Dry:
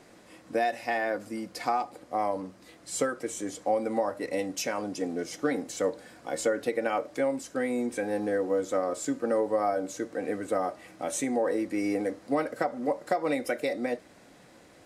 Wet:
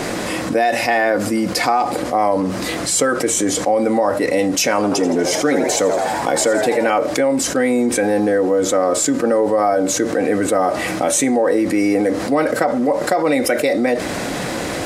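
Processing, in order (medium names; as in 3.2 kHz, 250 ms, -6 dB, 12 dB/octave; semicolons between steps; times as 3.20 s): 4.75–6.90 s: frequency-shifting echo 82 ms, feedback 56%, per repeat +97 Hz, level -9.5 dB; level flattener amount 70%; trim +8.5 dB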